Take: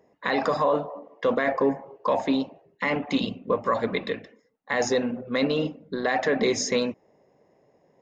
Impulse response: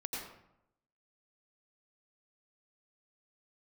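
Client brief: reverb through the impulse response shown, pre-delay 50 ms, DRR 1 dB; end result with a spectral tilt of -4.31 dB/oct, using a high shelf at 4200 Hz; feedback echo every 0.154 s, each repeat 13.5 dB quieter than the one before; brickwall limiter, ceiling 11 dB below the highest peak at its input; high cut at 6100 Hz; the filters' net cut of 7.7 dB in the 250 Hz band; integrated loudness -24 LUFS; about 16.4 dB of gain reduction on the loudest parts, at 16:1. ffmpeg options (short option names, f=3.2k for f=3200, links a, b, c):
-filter_complex "[0:a]lowpass=6.1k,equalizer=f=250:t=o:g=-9,highshelf=f=4.2k:g=-5,acompressor=threshold=-37dB:ratio=16,alimiter=level_in=8dB:limit=-24dB:level=0:latency=1,volume=-8dB,aecho=1:1:154|308:0.211|0.0444,asplit=2[a][b];[1:a]atrim=start_sample=2205,adelay=50[c];[b][c]afir=irnorm=-1:irlink=0,volume=-2.5dB[d];[a][d]amix=inputs=2:normalize=0,volume=17.5dB"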